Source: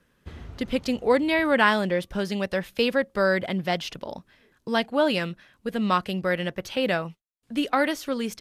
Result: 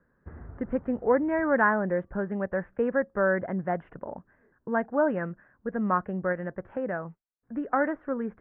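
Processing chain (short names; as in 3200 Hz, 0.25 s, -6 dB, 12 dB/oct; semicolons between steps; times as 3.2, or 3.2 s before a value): elliptic low-pass 1700 Hz, stop band 60 dB; 6.32–7.71 compressor 2:1, threshold -28 dBFS, peak gain reduction 4.5 dB; gain -2 dB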